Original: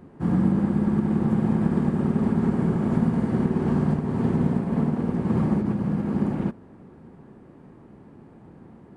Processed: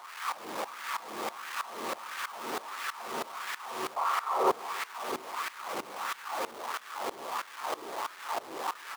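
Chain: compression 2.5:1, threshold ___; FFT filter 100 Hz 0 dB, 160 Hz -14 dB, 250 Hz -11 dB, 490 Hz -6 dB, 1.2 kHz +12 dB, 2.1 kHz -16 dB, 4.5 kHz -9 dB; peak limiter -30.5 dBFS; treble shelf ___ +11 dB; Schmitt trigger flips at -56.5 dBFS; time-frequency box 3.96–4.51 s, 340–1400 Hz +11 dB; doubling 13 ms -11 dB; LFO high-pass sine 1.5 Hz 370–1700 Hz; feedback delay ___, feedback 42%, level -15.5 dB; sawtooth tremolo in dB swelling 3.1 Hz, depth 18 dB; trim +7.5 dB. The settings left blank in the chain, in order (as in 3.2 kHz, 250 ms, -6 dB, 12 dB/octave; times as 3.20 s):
-30 dBFS, 2.4 kHz, 141 ms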